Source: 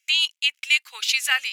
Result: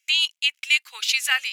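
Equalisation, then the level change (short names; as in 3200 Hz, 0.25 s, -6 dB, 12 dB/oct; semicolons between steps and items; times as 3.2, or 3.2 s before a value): low shelf 420 Hz -4.5 dB; 0.0 dB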